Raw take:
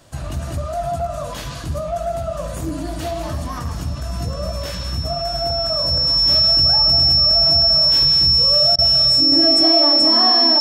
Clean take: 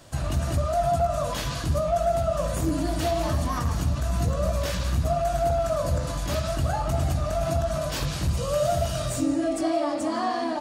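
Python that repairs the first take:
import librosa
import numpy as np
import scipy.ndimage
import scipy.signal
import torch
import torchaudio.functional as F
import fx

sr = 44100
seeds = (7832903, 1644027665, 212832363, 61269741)

y = fx.notch(x, sr, hz=5400.0, q=30.0)
y = fx.fix_interpolate(y, sr, at_s=(8.76,), length_ms=24.0)
y = fx.fix_level(y, sr, at_s=9.32, step_db=-6.0)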